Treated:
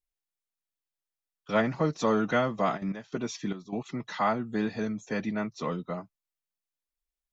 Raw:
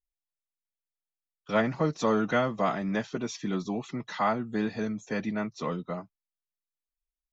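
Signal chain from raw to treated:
0:02.76–0:03.85: gate pattern ".x..xxxx." 149 BPM −12 dB

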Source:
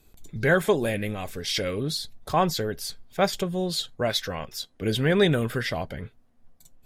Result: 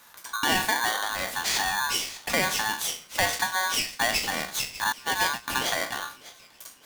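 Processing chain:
peak hold with a decay on every bin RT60 0.31 s
0:04.92–0:05.48: noise gate −18 dBFS, range −29 dB
high-pass filter 160 Hz 12 dB per octave
in parallel at −1 dB: brickwall limiter −17 dBFS, peak gain reduction 9.5 dB
on the sum: downward compressor 2 to 1, threshold −35 dBFS, peak gain reduction 12.5 dB
flanger 0.6 Hz, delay 1.3 ms, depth 8.1 ms, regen −66%
on a send: delay with a high-pass on its return 598 ms, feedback 47%, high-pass 2,600 Hz, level −14 dB
on the sum: ring modulator with a square carrier 1,300 Hz
level +8.5 dB

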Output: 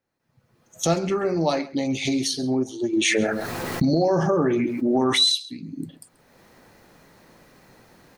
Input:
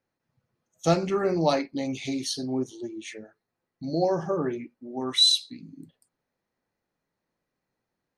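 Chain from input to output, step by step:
camcorder AGC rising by 28 dB per second
slap from a distant wall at 23 metres, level −19 dB
0:02.93–0:05.21: envelope flattener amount 70%

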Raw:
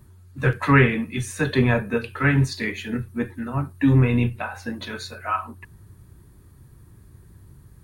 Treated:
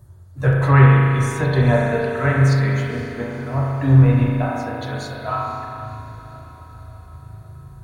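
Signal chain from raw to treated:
graphic EQ with 15 bands 100 Hz +11 dB, 250 Hz −7 dB, 630 Hz +9 dB, 2,500 Hz −7 dB, 6,300 Hz +3 dB
feedback delay with all-pass diffusion 506 ms, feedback 58%, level −14 dB
spring reverb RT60 2.2 s, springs 37 ms, chirp 30 ms, DRR −2 dB
level −2 dB

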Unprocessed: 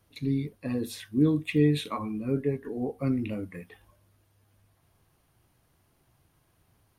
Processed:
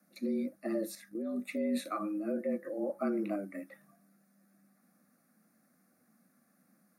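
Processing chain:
0:02.90–0:03.36: parametric band 940 Hz +11.5 dB 0.88 octaves
frequency shifter +98 Hz
brickwall limiter −21 dBFS, peak gain reduction 9.5 dB
phaser with its sweep stopped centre 620 Hz, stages 8
0:00.86–0:01.35: output level in coarse steps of 9 dB

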